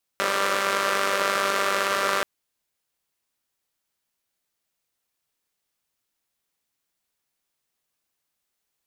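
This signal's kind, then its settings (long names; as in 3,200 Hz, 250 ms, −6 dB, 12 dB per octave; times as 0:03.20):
pulse-train model of a four-cylinder engine, steady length 2.03 s, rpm 5,900, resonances 550/1,200 Hz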